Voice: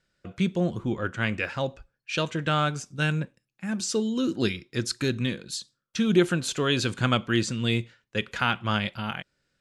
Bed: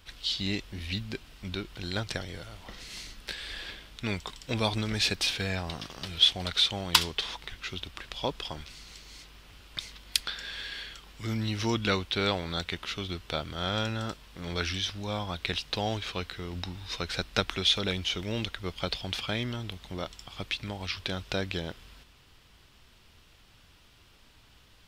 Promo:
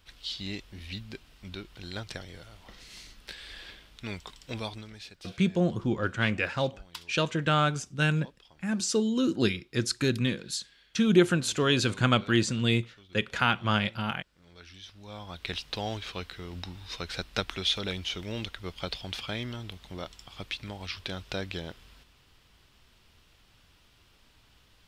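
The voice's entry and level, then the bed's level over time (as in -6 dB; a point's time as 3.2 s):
5.00 s, 0.0 dB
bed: 4.55 s -5.5 dB
5.11 s -21 dB
14.55 s -21 dB
15.52 s -3 dB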